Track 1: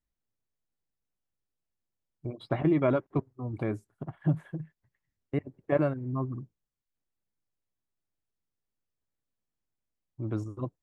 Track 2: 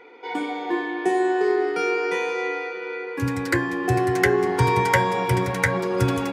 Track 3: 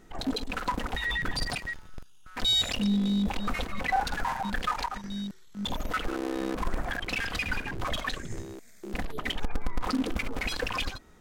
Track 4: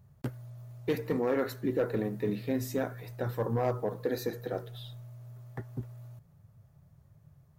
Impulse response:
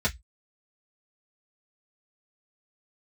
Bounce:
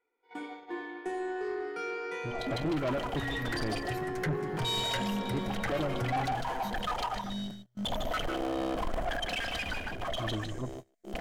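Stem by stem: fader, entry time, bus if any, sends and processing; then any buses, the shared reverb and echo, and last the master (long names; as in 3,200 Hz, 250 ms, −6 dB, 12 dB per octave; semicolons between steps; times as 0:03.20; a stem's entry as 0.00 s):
−1.5 dB, 0.00 s, no send, echo send −15.5 dB, no processing
−13.0 dB, 0.00 s, no send, no echo send, parametric band 1,400 Hz +4 dB 0.41 octaves
−1.0 dB, 2.20 s, no send, echo send −9.5 dB, noise gate with hold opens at −41 dBFS; hollow resonant body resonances 660/3,100 Hz, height 13 dB, ringing for 20 ms; automatic ducking −6 dB, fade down 1.30 s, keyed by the first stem
−6.5 dB, 2.45 s, no send, no echo send, brickwall limiter −29 dBFS, peak gain reduction 9 dB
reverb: not used
echo: single-tap delay 152 ms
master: noise gate −41 dBFS, range −22 dB; soft clipping −26.5 dBFS, distortion −11 dB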